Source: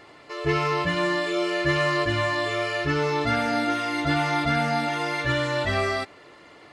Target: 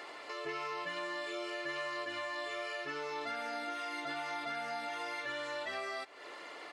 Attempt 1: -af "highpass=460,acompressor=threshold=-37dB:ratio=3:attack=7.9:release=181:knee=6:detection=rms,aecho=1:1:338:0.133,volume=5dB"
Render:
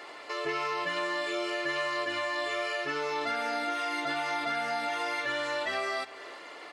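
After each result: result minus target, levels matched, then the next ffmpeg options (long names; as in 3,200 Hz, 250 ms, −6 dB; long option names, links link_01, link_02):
downward compressor: peak gain reduction −7.5 dB; echo-to-direct +9.5 dB
-af "highpass=460,acompressor=threshold=-48.5dB:ratio=3:attack=7.9:release=181:knee=6:detection=rms,aecho=1:1:338:0.133,volume=5dB"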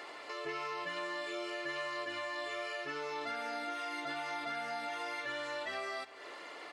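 echo-to-direct +9.5 dB
-af "highpass=460,acompressor=threshold=-48.5dB:ratio=3:attack=7.9:release=181:knee=6:detection=rms,aecho=1:1:338:0.0447,volume=5dB"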